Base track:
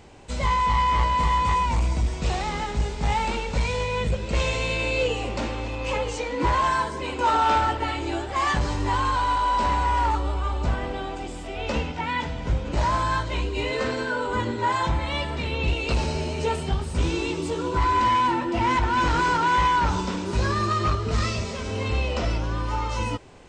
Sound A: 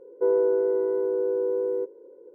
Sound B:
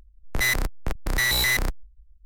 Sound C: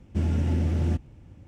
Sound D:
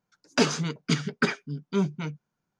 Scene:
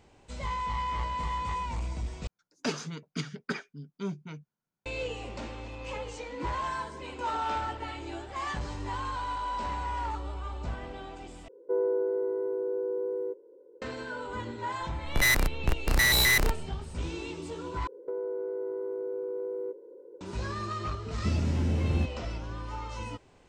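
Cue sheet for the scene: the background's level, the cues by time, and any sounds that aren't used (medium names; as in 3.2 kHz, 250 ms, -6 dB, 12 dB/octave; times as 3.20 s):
base track -11 dB
2.27 s: replace with D -9.5 dB
11.48 s: replace with A -6 dB
14.81 s: add B -0.5 dB
17.87 s: replace with A -0.5 dB + compression, threshold -31 dBFS
21.09 s: add C -3 dB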